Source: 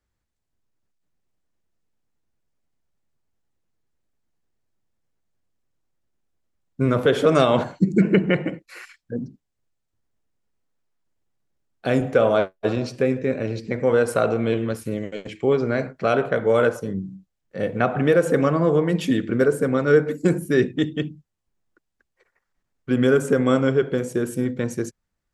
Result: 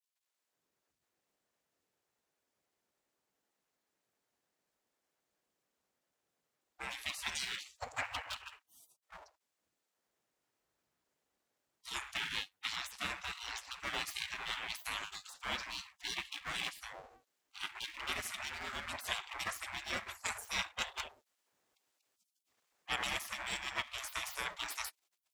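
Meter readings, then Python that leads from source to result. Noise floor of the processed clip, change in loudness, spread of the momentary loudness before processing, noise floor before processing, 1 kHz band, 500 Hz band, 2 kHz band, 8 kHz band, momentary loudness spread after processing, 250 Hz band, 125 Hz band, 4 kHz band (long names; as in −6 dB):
below −85 dBFS, −18.5 dB, 13 LU, −79 dBFS, −14.5 dB, −34.5 dB, −10.0 dB, −3.5 dB, 8 LU, −35.5 dB, −33.0 dB, −2.0 dB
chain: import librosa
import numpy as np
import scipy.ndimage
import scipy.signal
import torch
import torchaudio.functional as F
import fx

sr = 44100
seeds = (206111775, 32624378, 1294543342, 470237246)

y = np.where(x < 0.0, 10.0 ** (-7.0 / 20.0) * x, x)
y = fx.rider(y, sr, range_db=10, speed_s=0.5)
y = fx.spec_gate(y, sr, threshold_db=-30, keep='weak')
y = F.gain(torch.from_numpy(y), 4.5).numpy()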